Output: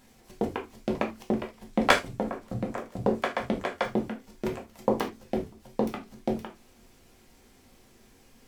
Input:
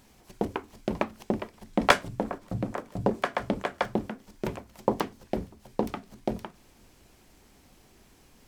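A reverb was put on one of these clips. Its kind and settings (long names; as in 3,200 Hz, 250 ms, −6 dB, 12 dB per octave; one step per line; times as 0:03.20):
reverb whose tail is shaped and stops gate 100 ms falling, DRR 1.5 dB
level −2 dB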